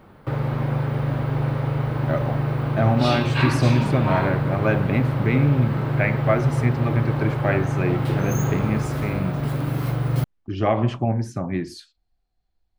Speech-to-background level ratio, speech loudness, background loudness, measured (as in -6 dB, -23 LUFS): 0.0 dB, -24.0 LUFS, -24.0 LUFS